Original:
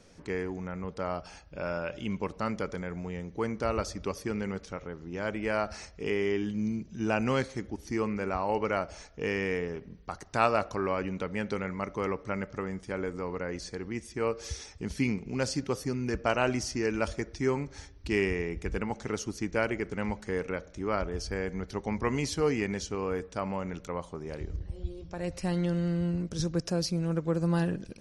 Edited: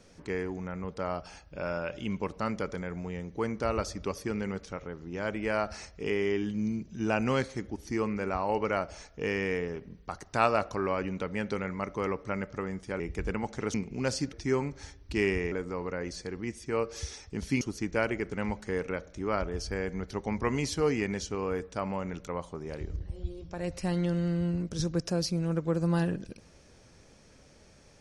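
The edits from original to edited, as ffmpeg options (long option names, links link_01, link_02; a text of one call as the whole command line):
ffmpeg -i in.wav -filter_complex "[0:a]asplit=6[link_01][link_02][link_03][link_04][link_05][link_06];[link_01]atrim=end=13.002[link_07];[link_02]atrim=start=18.468:end=19.212[link_08];[link_03]atrim=start=15.088:end=15.682[link_09];[link_04]atrim=start=17.278:end=18.472[link_10];[link_05]atrim=start=12.998:end=15.092[link_11];[link_06]atrim=start=19.208[link_12];[link_07][link_08]acrossfade=duration=0.004:curve1=hsin:curve2=hsin[link_13];[link_13][link_09]acrossfade=duration=0.004:curve1=hsin:curve2=hsin[link_14];[link_14][link_10]acrossfade=duration=0.004:curve1=hsin:curve2=hsin[link_15];[link_15][link_11]acrossfade=duration=0.004:curve1=hsin:curve2=hsin[link_16];[link_16][link_12]acrossfade=duration=0.004:curve1=hsin:curve2=hsin" out.wav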